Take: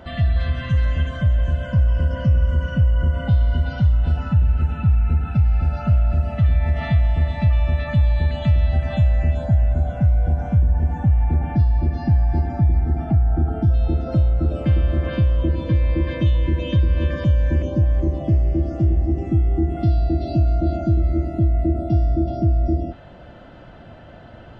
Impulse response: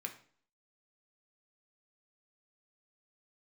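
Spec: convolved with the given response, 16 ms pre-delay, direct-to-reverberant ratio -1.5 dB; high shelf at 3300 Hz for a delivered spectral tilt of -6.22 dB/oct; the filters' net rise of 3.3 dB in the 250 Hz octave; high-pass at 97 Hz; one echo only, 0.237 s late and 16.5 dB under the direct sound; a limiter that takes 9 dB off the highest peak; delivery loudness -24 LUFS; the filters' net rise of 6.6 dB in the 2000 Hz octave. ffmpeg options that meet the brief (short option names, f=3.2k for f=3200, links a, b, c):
-filter_complex "[0:a]highpass=97,equalizer=f=250:t=o:g=5,equalizer=f=2k:t=o:g=6.5,highshelf=f=3.3k:g=6.5,alimiter=limit=-16.5dB:level=0:latency=1,aecho=1:1:237:0.15,asplit=2[a][b];[1:a]atrim=start_sample=2205,adelay=16[c];[b][c]afir=irnorm=-1:irlink=0,volume=2.5dB[d];[a][d]amix=inputs=2:normalize=0,volume=-1dB"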